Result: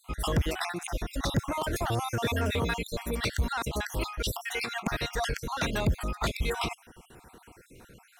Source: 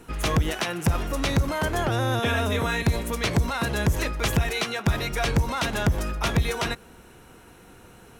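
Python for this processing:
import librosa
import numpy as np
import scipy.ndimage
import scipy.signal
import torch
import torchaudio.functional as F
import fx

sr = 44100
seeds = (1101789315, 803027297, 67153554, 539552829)

y = fx.spec_dropout(x, sr, seeds[0], share_pct=47)
y = fx.high_shelf(y, sr, hz=fx.line((1.7, 6800.0), (2.39, 10000.0)), db=8.5, at=(1.7, 2.39), fade=0.02)
y = 10.0 ** (-17.5 / 20.0) * np.tanh(y / 10.0 ** (-17.5 / 20.0))
y = y * librosa.db_to_amplitude(-1.0)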